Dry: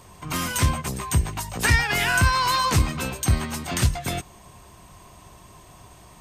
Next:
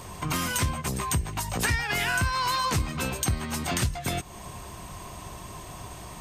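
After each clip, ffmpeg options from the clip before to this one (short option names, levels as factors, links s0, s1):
-af "acompressor=threshold=0.0178:ratio=3,volume=2.24"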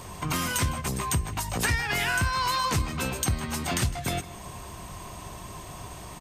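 -filter_complex "[0:a]asplit=2[s0][s1];[s1]adelay=157.4,volume=0.158,highshelf=f=4000:g=-3.54[s2];[s0][s2]amix=inputs=2:normalize=0"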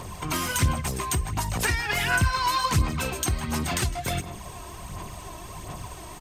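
-af "aphaser=in_gain=1:out_gain=1:delay=3.1:decay=0.46:speed=1.4:type=sinusoidal"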